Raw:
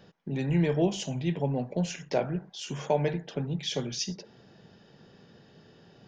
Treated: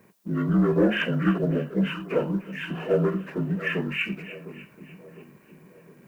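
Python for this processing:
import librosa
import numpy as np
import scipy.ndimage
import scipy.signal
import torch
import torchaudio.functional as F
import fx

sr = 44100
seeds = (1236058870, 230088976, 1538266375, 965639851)

p1 = fx.partial_stretch(x, sr, pct=75)
p2 = fx.peak_eq(p1, sr, hz=1000.0, db=9.0, octaves=2.5, at=(0.76, 1.38))
p3 = fx.leveller(p2, sr, passes=1)
p4 = p3 + fx.echo_split(p3, sr, split_hz=1100.0, low_ms=709, high_ms=299, feedback_pct=52, wet_db=-15.5, dry=0)
p5 = fx.dmg_noise_colour(p4, sr, seeds[0], colour='blue', level_db=-71.0)
y = F.gain(torch.from_numpy(p5), 2.0).numpy()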